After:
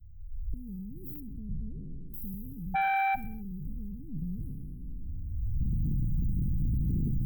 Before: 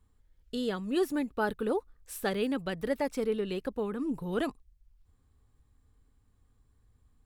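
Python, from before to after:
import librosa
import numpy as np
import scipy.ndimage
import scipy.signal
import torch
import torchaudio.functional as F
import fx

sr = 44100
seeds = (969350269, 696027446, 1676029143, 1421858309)

y = fx.spec_trails(x, sr, decay_s=1.44)
y = fx.recorder_agc(y, sr, target_db=-24.5, rise_db_per_s=28.0, max_gain_db=30)
y = scipy.signal.sosfilt(scipy.signal.cheby2(4, 80, [720.0, 5800.0], 'bandstop', fs=sr, output='sos'), y)
y = fx.dynamic_eq(y, sr, hz=310.0, q=1.0, threshold_db=-59.0, ratio=4.0, max_db=-7)
y = fx.dmg_tone(y, sr, hz=780.0, level_db=-30.0, at=(2.74, 3.14), fade=0.02)
y = fx.fold_sine(y, sr, drive_db=9, ceiling_db=-24.5)
y = fx.air_absorb(y, sr, metres=88.0, at=(1.2, 2.14))
y = fx.echo_feedback(y, sr, ms=65, feedback_pct=52, wet_db=-19.0)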